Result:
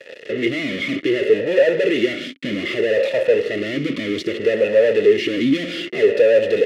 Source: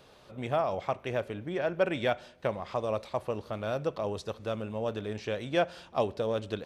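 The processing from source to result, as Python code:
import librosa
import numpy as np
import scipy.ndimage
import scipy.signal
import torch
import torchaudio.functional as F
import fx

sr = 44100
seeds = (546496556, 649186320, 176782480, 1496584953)

y = fx.fuzz(x, sr, gain_db=52.0, gate_db=-52.0)
y = fx.notch_comb(y, sr, f0_hz=770.0)
y = fx.vowel_sweep(y, sr, vowels='e-i', hz=0.63)
y = F.gain(torch.from_numpy(y), 8.0).numpy()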